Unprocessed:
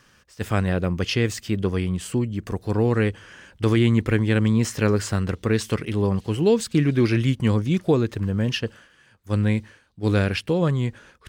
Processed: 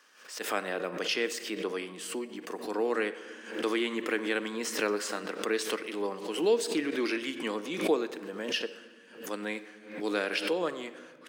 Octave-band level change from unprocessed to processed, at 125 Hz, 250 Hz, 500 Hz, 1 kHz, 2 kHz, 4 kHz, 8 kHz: −32.0, −12.0, −6.0, −3.5, −3.0, −2.5, −3.5 decibels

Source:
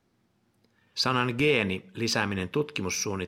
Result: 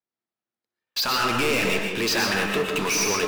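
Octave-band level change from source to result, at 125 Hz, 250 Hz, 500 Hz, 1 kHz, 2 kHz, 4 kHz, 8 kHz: −2.5, +1.5, +3.0, +6.0, +6.0, +6.0, +7.5 decibels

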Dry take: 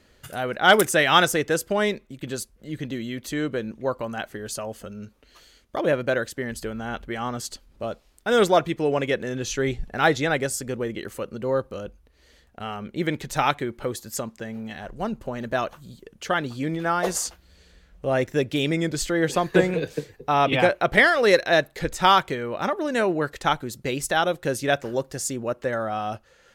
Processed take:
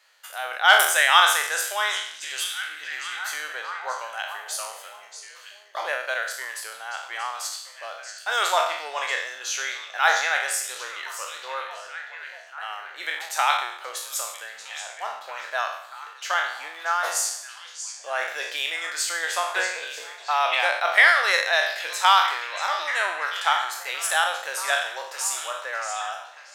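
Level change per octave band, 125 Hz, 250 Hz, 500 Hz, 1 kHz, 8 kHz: below −40 dB, below −30 dB, −10.0 dB, +1.0 dB, +4.5 dB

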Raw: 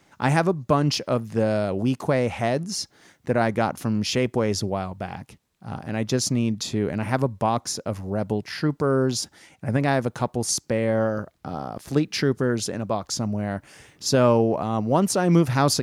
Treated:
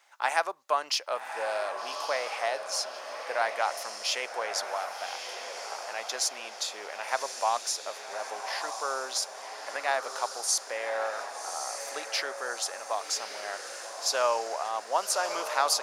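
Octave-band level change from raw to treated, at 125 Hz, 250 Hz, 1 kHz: below −40 dB, −31.5 dB, −2.0 dB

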